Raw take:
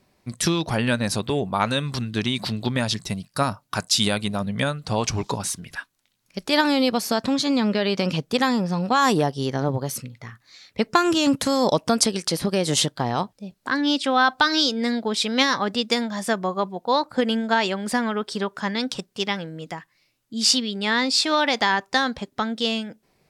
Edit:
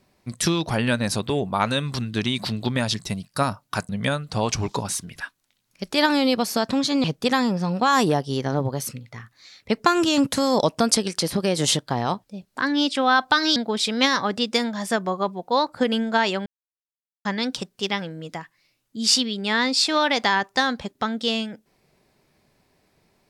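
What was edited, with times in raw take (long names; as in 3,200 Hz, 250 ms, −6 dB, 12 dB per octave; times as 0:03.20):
0:03.89–0:04.44: remove
0:07.59–0:08.13: remove
0:14.65–0:14.93: remove
0:17.83–0:18.62: silence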